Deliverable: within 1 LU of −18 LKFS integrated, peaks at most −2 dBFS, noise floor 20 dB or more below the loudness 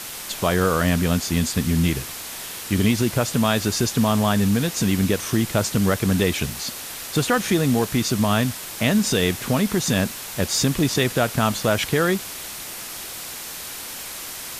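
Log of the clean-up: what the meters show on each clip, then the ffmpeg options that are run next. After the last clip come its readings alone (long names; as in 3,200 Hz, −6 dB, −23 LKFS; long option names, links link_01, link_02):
background noise floor −34 dBFS; target noise floor −42 dBFS; integrated loudness −22.0 LKFS; sample peak −6.5 dBFS; target loudness −18.0 LKFS
→ -af "afftdn=noise_reduction=8:noise_floor=-34"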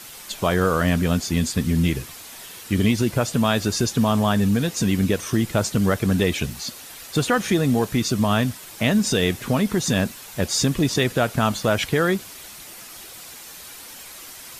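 background noise floor −41 dBFS; target noise floor −42 dBFS
→ -af "afftdn=noise_reduction=6:noise_floor=-41"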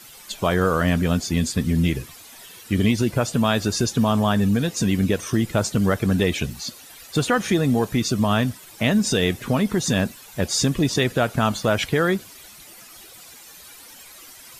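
background noise floor −45 dBFS; integrated loudness −21.5 LKFS; sample peak −7.0 dBFS; target loudness −18.0 LKFS
→ -af "volume=3.5dB"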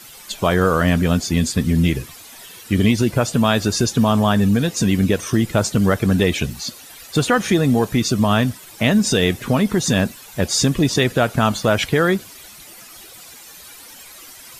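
integrated loudness −18.0 LKFS; sample peak −3.5 dBFS; background noise floor −41 dBFS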